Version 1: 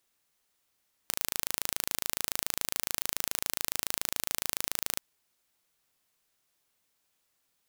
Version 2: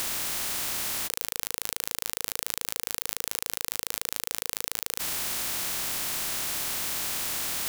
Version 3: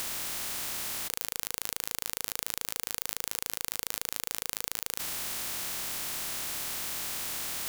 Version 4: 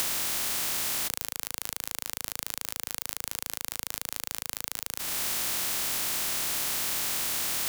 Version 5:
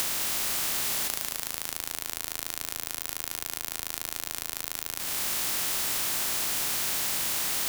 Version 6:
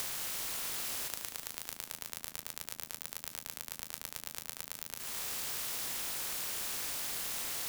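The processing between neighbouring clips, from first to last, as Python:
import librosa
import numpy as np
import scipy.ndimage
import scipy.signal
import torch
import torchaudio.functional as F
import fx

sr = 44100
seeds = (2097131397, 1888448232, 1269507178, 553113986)

y1 = fx.bin_compress(x, sr, power=0.2)
y1 = fx.peak_eq(y1, sr, hz=480.0, db=-5.5, octaves=0.2)
y1 = fx.over_compress(y1, sr, threshold_db=-37.0, ratio=-1.0)
y1 = y1 * 10.0 ** (6.5 / 20.0)
y2 = fx.bin_compress(y1, sr, power=0.2)
y2 = y2 * 10.0 ** (-8.0 / 20.0)
y3 = fx.band_squash(y2, sr, depth_pct=100)
y4 = fx.echo_feedback(y3, sr, ms=210, feedback_pct=60, wet_db=-8)
y5 = y4 * np.sin(2.0 * np.pi * 140.0 * np.arange(len(y4)) / sr)
y5 = y5 * 10.0 ** (-6.0 / 20.0)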